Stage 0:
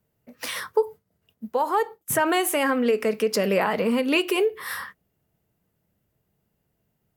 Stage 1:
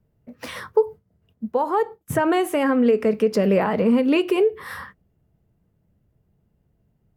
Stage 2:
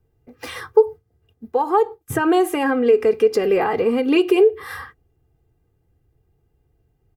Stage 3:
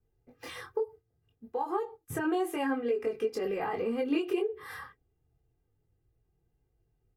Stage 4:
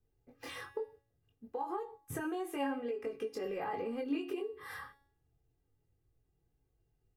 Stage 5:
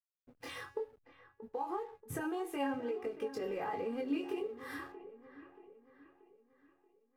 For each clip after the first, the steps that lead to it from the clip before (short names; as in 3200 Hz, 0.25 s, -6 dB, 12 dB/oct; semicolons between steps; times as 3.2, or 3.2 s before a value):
tilt -3 dB/oct
comb 2.5 ms, depth 79%
compressor 4:1, threshold -17 dBFS, peak gain reduction 8.5 dB; chorus voices 4, 0.29 Hz, delay 22 ms, depth 4.5 ms; gain -7.5 dB
compressor 2.5:1, threshold -34 dBFS, peak gain reduction 7 dB; resonator 280 Hz, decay 0.6 s, harmonics all, mix 70%; gain +7 dB
backlash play -58 dBFS; dark delay 0.631 s, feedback 46%, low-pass 2100 Hz, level -14 dB